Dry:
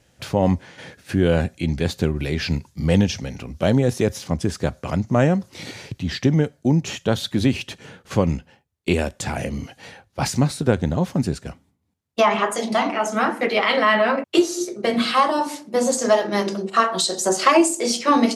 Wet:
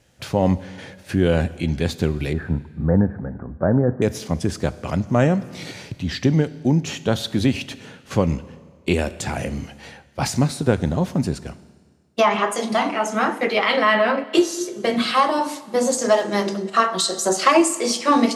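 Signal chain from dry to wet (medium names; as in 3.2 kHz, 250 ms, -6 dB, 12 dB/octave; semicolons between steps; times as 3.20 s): 2.33–4.02 s: steep low-pass 1.7 kHz 72 dB/octave; Schroeder reverb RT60 1.7 s, combs from 25 ms, DRR 16 dB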